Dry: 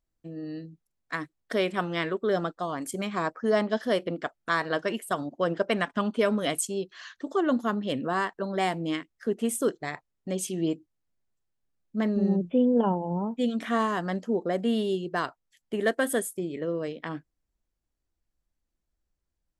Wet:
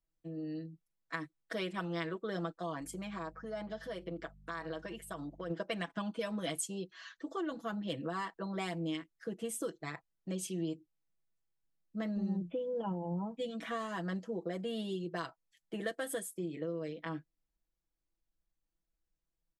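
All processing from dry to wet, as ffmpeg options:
-filter_complex "[0:a]asettb=1/sr,asplit=3[a][b][c];[a]atrim=end=2.804[d];[b]atrim=start=2.8:end=5.5,asetpts=PTS-STARTPTS,afade=t=in:d=0.004:c=qsin,afade=t=out:st=2.696:d=0.004:c=qsin,acompressor=threshold=-32dB:ratio=4:attack=3.2:release=140:knee=1:detection=peak,aeval=exprs='val(0)+0.00316*(sin(2*PI*50*n/s)+sin(2*PI*2*50*n/s)/2+sin(2*PI*3*50*n/s)/3+sin(2*PI*4*50*n/s)/4+sin(2*PI*5*50*n/s)/5)':c=same[e];[c]atrim=start=5.496[f];[d][e]acrossfade=d=0.004:c1=hsin:c2=qsin[g];[g][f]acrossfade=d=0.004:c1=qsin:c2=hsin,highshelf=f=8.8k:g=-5,aecho=1:1:6.1:0.88,acrossover=split=130|3000[h][i][j];[i]acompressor=threshold=-26dB:ratio=6[k];[h][k][j]amix=inputs=3:normalize=0,volume=-8.5dB"

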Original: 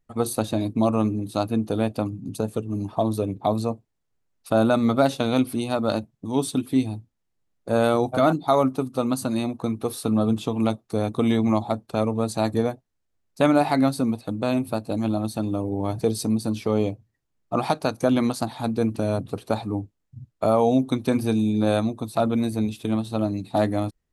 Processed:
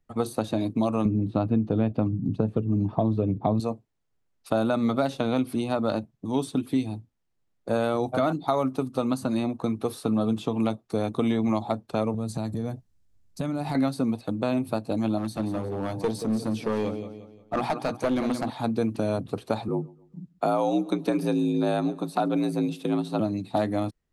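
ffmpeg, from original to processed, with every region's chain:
-filter_complex "[0:a]asettb=1/sr,asplit=3[a][b][c];[a]atrim=end=1.054[d];[b]atrim=start=1.05:end=3.6,asetpts=PTS-STARTPTS,afade=t=in:d=0.004:c=qsin,afade=t=out:st=2.546:d=0.004:c=qsin,acrossover=split=3600[e][f];[f]acompressor=threshold=-57dB:ratio=4:attack=1:release=60[g];[e][g]amix=inputs=2:normalize=0,aemphasis=mode=reproduction:type=riaa[h];[c]atrim=start=3.596[i];[d][h]acrossfade=d=0.004:c1=hsin:c2=qsin[j];[j][i]acrossfade=d=0.004:c1=qsin:c2=hsin,asettb=1/sr,asplit=3[k][l][m];[k]atrim=end=12.144[n];[l]atrim=start=12.14:end=13.75,asetpts=PTS-STARTPTS,afade=t=in:d=0.004:c=qsin,afade=t=out:st=1.606:d=0.004:c=qsin,bass=f=250:g=14,treble=f=4k:g=8,acompressor=threshold=-25dB:ratio=8:attack=3.2:release=140:knee=1:detection=peak[o];[m]atrim=start=13.746[p];[n][o]acrossfade=d=0.004:c1=hsin:c2=qsin[q];[q][p]acrossfade=d=0.004:c1=qsin:c2=hsin,asettb=1/sr,asplit=3[r][s][t];[r]atrim=end=15.184[u];[s]atrim=start=15.18:end=18.5,asetpts=PTS-STARTPTS,afade=t=in:d=0.004:c=qsin,afade=t=out:st=3.316:d=0.004:c=qsin,bandreject=f=60:t=h:w=6,bandreject=f=120:t=h:w=6,bandreject=f=180:t=h:w=6,bandreject=f=240:t=h:w=6,bandreject=f=300:t=h:w=6,aecho=1:1:177|354|531|708:0.251|0.0955|0.0363|0.0138,atrim=end_sample=146412,aeval=exprs='clip(val(0),-1,0.0708)':c=same[v];[t]atrim=start=18.496[w];[u][v]acrossfade=d=0.004:c1=hsin:c2=qsin[x];[x][w]acrossfade=d=0.004:c1=qsin:c2=hsin,asettb=1/sr,asplit=3[y][z][aa];[y]atrim=end=19.684[ab];[z]atrim=start=19.68:end=23.2,asetpts=PTS-STARTPTS,afade=t=in:d=0.004:c=qsin,afade=t=out:st=3.516:d=0.004:c=qsin,afreqshift=54,aecho=1:1:136|272|408:0.0668|0.0281|0.0118,atrim=end_sample=155232[ac];[aa]atrim=start=23.196[ad];[ab][ac]acrossfade=d=0.004:c1=hsin:c2=qsin[ae];[ae][ad]acrossfade=d=0.004:c1=qsin:c2=hsin,highshelf=f=8.4k:g=-8,acrossover=split=110|2100[af][ag][ah];[af]acompressor=threshold=-45dB:ratio=4[ai];[ag]acompressor=threshold=-21dB:ratio=4[aj];[ah]acompressor=threshold=-41dB:ratio=4[ak];[ai][aj][ak]amix=inputs=3:normalize=0"

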